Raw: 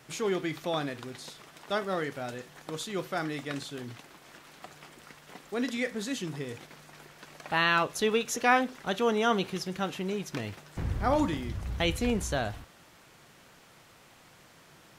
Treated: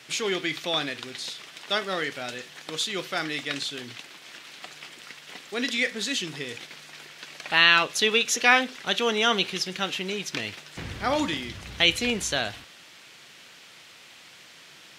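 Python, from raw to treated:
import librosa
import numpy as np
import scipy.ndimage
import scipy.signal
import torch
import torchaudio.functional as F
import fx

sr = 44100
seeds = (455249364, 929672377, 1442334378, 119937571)

y = fx.weighting(x, sr, curve='D')
y = y * librosa.db_to_amplitude(1.0)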